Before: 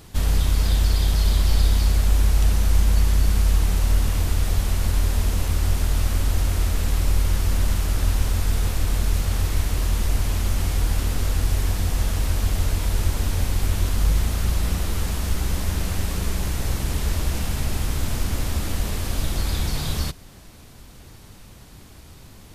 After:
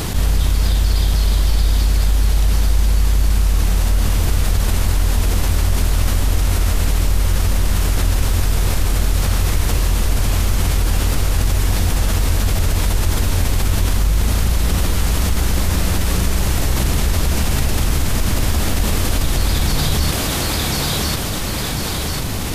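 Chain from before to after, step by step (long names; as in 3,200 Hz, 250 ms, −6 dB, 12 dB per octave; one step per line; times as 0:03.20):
feedback echo with a high-pass in the loop 1,046 ms, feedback 31%, high-pass 180 Hz, level −6 dB
envelope flattener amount 70%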